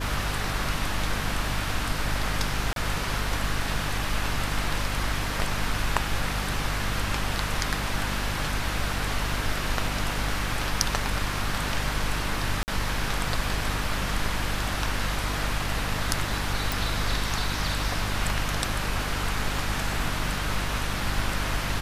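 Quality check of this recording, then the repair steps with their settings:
hum 50 Hz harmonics 6 -32 dBFS
2.73–2.76 s: dropout 32 ms
12.63–12.68 s: dropout 49 ms
16.72 s: pop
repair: de-click; de-hum 50 Hz, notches 6; interpolate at 2.73 s, 32 ms; interpolate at 12.63 s, 49 ms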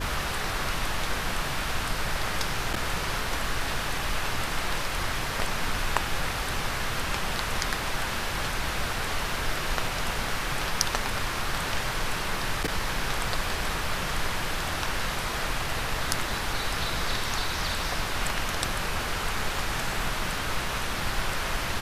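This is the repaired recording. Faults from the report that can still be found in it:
nothing left

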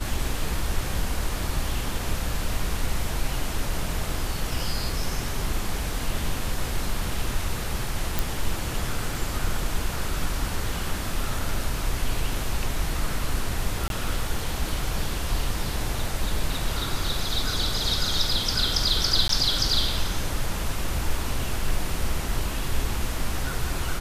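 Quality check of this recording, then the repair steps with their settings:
8.19 s: pop
13.88–13.90 s: dropout 22 ms
19.28–19.29 s: dropout 13 ms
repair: de-click; interpolate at 13.88 s, 22 ms; interpolate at 19.28 s, 13 ms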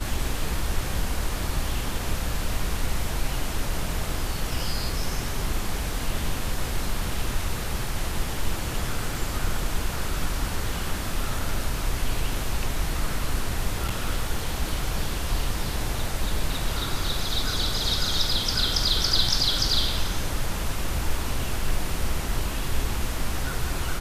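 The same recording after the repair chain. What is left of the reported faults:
nothing left

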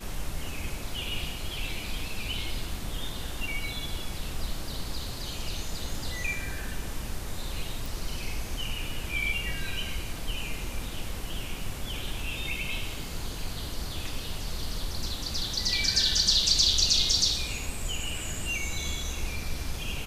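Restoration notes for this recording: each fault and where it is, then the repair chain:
7.86 s: pop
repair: de-click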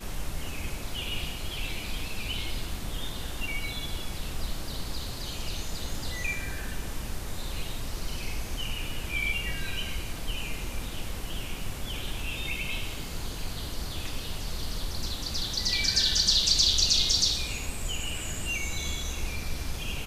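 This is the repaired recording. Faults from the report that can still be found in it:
nothing left

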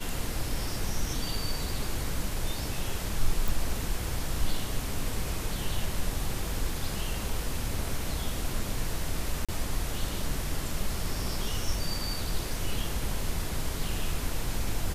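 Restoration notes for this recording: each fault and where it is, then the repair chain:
3.48 s: pop
9.45–9.49 s: dropout 36 ms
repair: de-click; interpolate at 9.45 s, 36 ms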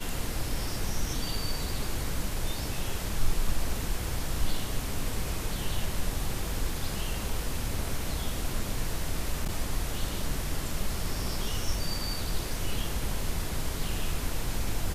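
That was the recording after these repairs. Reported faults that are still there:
nothing left

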